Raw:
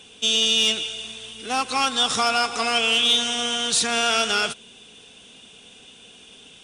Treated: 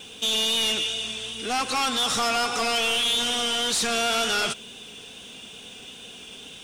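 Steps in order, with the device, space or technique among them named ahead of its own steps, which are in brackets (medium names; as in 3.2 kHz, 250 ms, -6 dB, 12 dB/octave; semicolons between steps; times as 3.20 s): compact cassette (saturation -26.5 dBFS, distortion -6 dB; low-pass 11 kHz 12 dB/octave; wow and flutter 24 cents; white noise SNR 37 dB); trim +5 dB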